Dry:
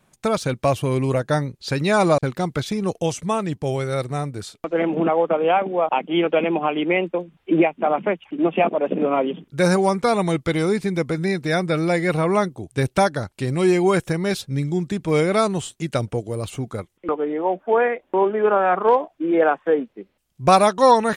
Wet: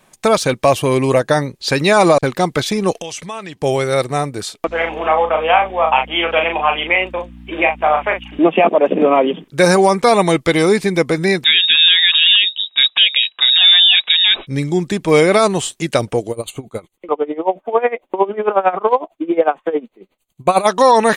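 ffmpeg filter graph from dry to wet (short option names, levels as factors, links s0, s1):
-filter_complex "[0:a]asettb=1/sr,asplit=3[s0][s1][s2];[s0]atrim=end=2.924[s3];[s1]atrim=start=2.92:end=3.59,asetpts=PTS-STARTPTS,afade=t=in:d=0.004:c=qsin,afade=t=out:st=0.666:d=0.004:c=qsin,equalizer=f=2800:t=o:w=2.6:g=9.5,acompressor=threshold=0.02:ratio=6:attack=3.2:release=140:knee=1:detection=peak[s4];[s2]atrim=start=3.586[s5];[s3][s4]acrossfade=d=0.004:c1=hsin:c2=qsin[s6];[s6][s5]acrossfade=d=0.004:c1=qsin:c2=hsin,asettb=1/sr,asplit=3[s7][s8][s9];[s7]atrim=end=4.674[s10];[s8]atrim=start=4.67:end=8.39,asetpts=PTS-STARTPTS,afade=t=in:d=0.004:c=qsin,afade=t=out:st=3.716:d=0.004:c=qsin,highpass=840,aeval=exprs='val(0)+0.0126*(sin(2*PI*60*n/s)+sin(2*PI*2*60*n/s)/2+sin(2*PI*3*60*n/s)/3+sin(2*PI*4*60*n/s)/4+sin(2*PI*5*60*n/s)/5)':c=same,asplit=2[s11][s12];[s12]adelay=38,volume=0.562[s13];[s11][s13]amix=inputs=2:normalize=0,atrim=end_sample=164052[s14];[s9]atrim=start=8.386[s15];[s10][s14]acrossfade=d=0.004:c1=hsin:c2=qsin[s16];[s16][s15]acrossfade=d=0.004:c1=qsin:c2=hsin,asettb=1/sr,asplit=3[s17][s18][s19];[s17]atrim=end=11.444[s20];[s18]atrim=start=11.44:end=14.47,asetpts=PTS-STARTPTS,afade=t=in:d=0.004:c=qsin,afade=t=out:st=3.026:d=0.004:c=qsin,equalizer=f=1100:w=1.3:g=10,lowpass=f=3300:t=q:w=0.5098,lowpass=f=3300:t=q:w=0.6013,lowpass=f=3300:t=q:w=0.9,lowpass=f=3300:t=q:w=2.563,afreqshift=-3900[s21];[s19]atrim=start=14.466[s22];[s20][s21]acrossfade=d=0.004:c1=hsin:c2=qsin[s23];[s23][s22]acrossfade=d=0.004:c1=qsin:c2=hsin,asettb=1/sr,asplit=3[s24][s25][s26];[s24]atrim=end=16.314[s27];[s25]atrim=start=16.31:end=20.67,asetpts=PTS-STARTPTS,afade=t=in:d=0.004:c=qsin,afade=t=out:st=4.356:d=0.004:c=qsin,asuperstop=centerf=5300:order=20:qfactor=3.8,equalizer=f=1700:t=o:w=0.22:g=-9,aeval=exprs='val(0)*pow(10,-20*(0.5-0.5*cos(2*PI*11*n/s))/20)':c=same[s28];[s26]atrim=start=20.666[s29];[s27][s28]acrossfade=d=0.004:c1=hsin:c2=qsin[s30];[s30][s29]acrossfade=d=0.004:c1=qsin:c2=hsin,equalizer=f=83:w=0.41:g=-10.5,bandreject=f=1400:w=12,alimiter=level_in=3.76:limit=0.891:release=50:level=0:latency=1,volume=0.891"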